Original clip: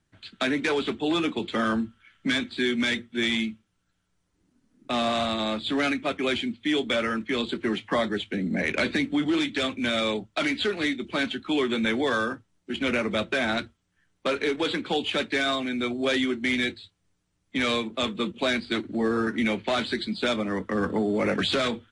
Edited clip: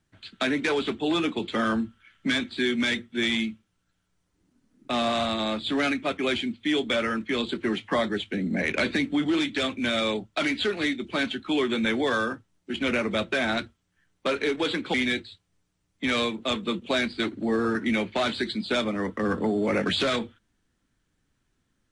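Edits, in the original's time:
14.94–16.46 s: delete

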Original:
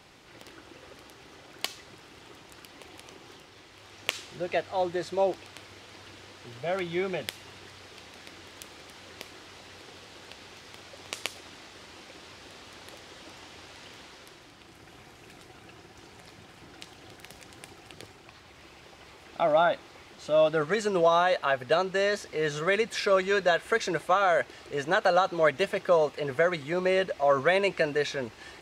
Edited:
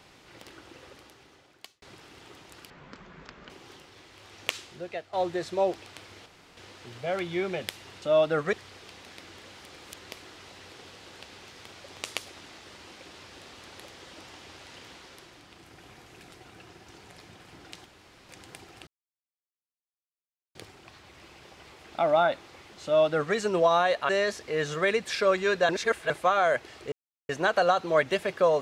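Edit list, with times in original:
0.80–1.82 s: fade out
2.70–3.10 s: speed 50%
4.05–4.73 s: fade out, to -13.5 dB
5.86–6.17 s: room tone
8.53–9.11 s: reverse
16.95–17.38 s: room tone
17.96 s: insert silence 1.68 s
20.25–20.76 s: copy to 7.62 s
21.50–21.94 s: delete
23.54–23.95 s: reverse
24.77 s: insert silence 0.37 s

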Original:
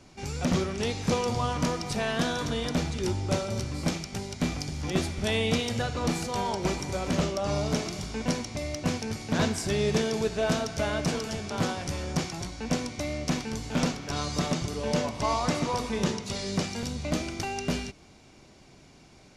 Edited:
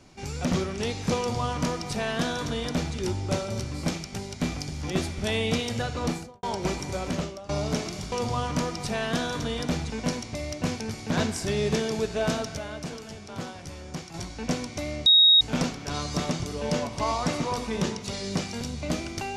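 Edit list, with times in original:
1.18–2.96 s: copy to 8.12 s
6.04–6.43 s: studio fade out
7.02–7.49 s: fade out linear, to -19 dB
10.79–12.36 s: gain -7.5 dB
13.28–13.63 s: bleep 3.77 kHz -13 dBFS

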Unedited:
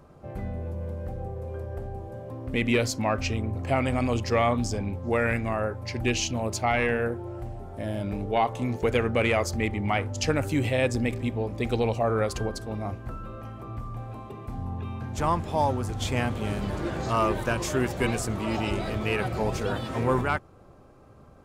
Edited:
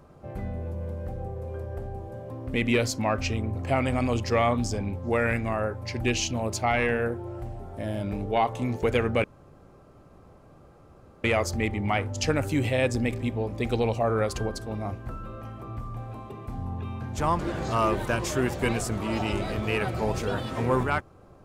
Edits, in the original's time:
9.24 s: insert room tone 2.00 s
15.39–16.77 s: delete

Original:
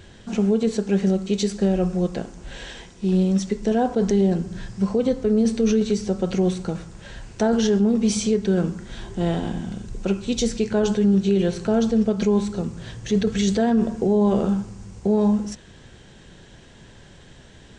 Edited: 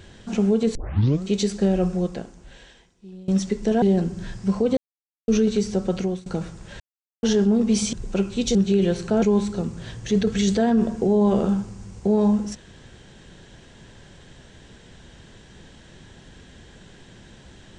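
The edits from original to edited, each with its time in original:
0.75 s: tape start 0.48 s
1.88–3.28 s: fade out quadratic, to -22.5 dB
3.82–4.16 s: delete
5.11–5.62 s: mute
6.26–6.60 s: fade out, to -21.5 dB
7.14–7.57 s: mute
8.27–9.84 s: delete
10.46–11.12 s: delete
11.79–12.22 s: delete

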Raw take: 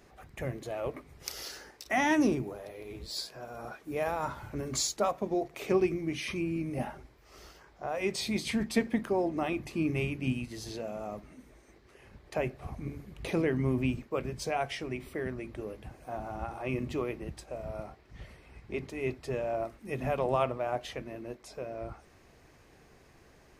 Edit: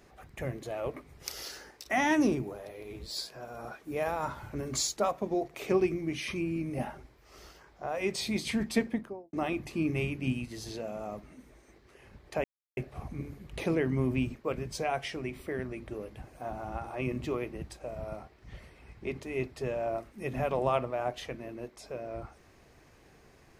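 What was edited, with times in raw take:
8.76–9.33 s: studio fade out
12.44 s: insert silence 0.33 s

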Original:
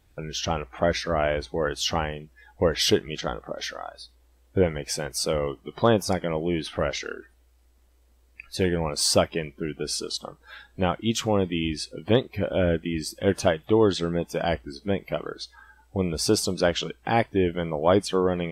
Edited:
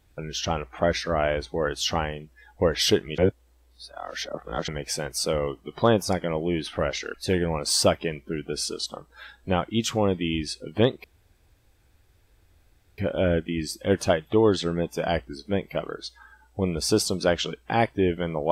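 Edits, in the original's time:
3.18–4.68 s: reverse
7.14–8.45 s: delete
12.35 s: insert room tone 1.94 s

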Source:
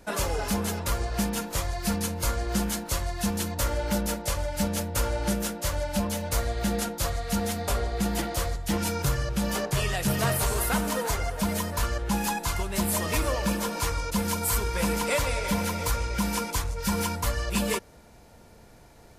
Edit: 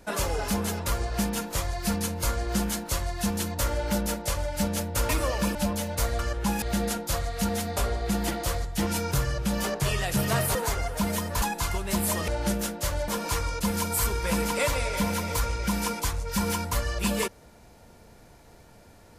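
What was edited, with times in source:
5.09–5.89 s: swap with 13.13–13.59 s
10.46–10.97 s: delete
11.84–12.27 s: move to 6.53 s

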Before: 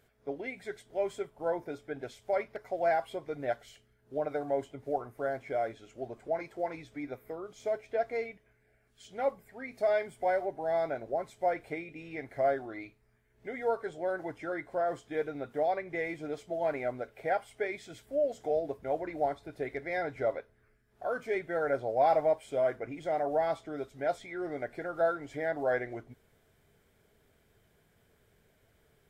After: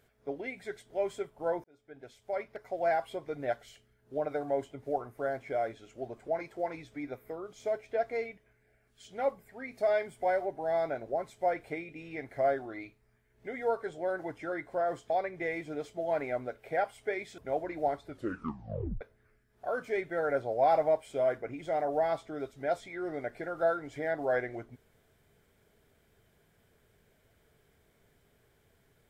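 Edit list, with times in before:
1.64–3.34 s: fade in equal-power
15.10–15.63 s: delete
17.91–18.76 s: delete
19.44 s: tape stop 0.95 s

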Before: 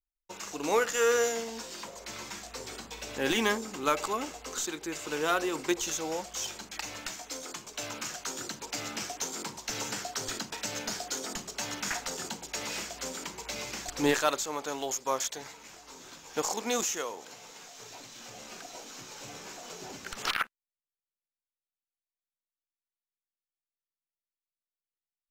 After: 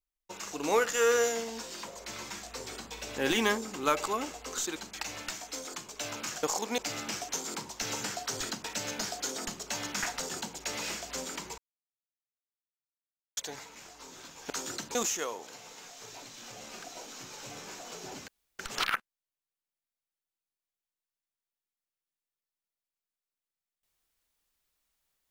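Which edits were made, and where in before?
4.76–6.54 s: delete
8.21–8.66 s: swap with 16.38–16.73 s
13.46–15.25 s: mute
20.06 s: insert room tone 0.31 s

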